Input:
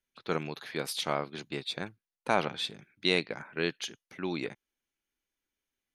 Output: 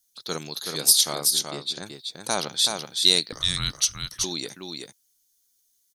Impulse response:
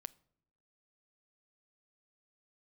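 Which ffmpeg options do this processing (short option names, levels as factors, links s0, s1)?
-filter_complex "[0:a]asettb=1/sr,asplit=3[s0][s1][s2];[s0]atrim=end=1.134[s3];[s1]atrim=start=1.13:end=1.83,asetpts=PTS-STARTPTS,afade=t=in:d=0.004:c=qsin,afade=t=out:st=0.696:d=0.004:c=qsin,aemphasis=mode=reproduction:type=75kf[s4];[s2]atrim=start=1.826[s5];[s3][s4]acrossfade=d=0.004:c1=hsin:c2=qsin[s6];[s6][s5]acrossfade=d=0.004:c1=qsin:c2=hsin,aecho=1:1:377:0.562,asettb=1/sr,asplit=3[s7][s8][s9];[s7]atrim=end=3.324[s10];[s8]atrim=start=3.32:end=4.24,asetpts=PTS-STARTPTS,afade=t=in:d=0.004:c=qsin,afade=t=out:st=0.916:d=0.004:c=qsin,afreqshift=-290[s11];[s9]atrim=start=4.236[s12];[s10][s11]acrossfade=d=0.004:c1=hsin:c2=qsin[s13];[s13][s12]acrossfade=d=0.004:c1=qsin:c2=hsin,aexciter=amount=8.2:drive=8.1:freq=3800,volume=0.891"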